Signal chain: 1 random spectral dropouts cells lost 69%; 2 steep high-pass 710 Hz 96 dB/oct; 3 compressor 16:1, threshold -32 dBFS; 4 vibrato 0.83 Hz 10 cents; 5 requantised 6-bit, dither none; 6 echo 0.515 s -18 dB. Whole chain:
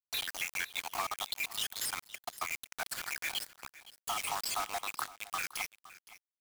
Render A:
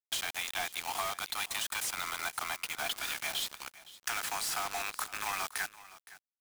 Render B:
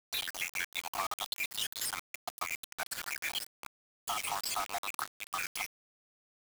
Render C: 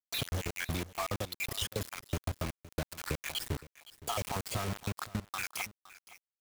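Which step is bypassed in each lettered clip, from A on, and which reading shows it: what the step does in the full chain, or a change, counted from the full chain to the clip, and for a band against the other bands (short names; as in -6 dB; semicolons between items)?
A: 1, momentary loudness spread change -4 LU; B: 6, momentary loudness spread change -4 LU; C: 2, 125 Hz band +26.0 dB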